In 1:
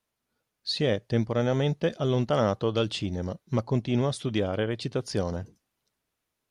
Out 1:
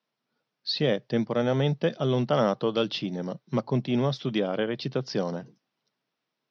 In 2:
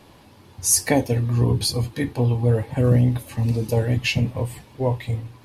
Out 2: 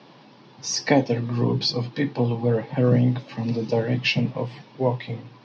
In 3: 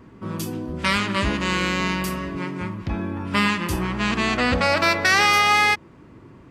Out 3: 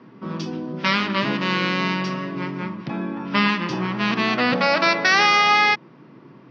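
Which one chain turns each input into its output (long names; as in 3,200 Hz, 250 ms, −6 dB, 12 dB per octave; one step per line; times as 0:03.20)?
Chebyshev band-pass filter 130–5,600 Hz, order 5
level +1.5 dB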